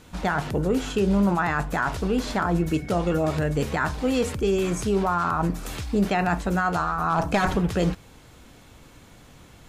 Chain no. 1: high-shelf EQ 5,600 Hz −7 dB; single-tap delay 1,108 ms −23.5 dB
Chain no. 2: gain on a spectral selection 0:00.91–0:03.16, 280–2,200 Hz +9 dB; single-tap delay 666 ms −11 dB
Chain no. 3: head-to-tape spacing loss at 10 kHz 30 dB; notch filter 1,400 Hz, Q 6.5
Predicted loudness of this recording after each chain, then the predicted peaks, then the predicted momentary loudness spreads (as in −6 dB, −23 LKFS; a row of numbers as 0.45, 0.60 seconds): −24.5, −21.0, −26.0 LKFS; −13.0, −3.0, −14.0 dBFS; 4, 11, 5 LU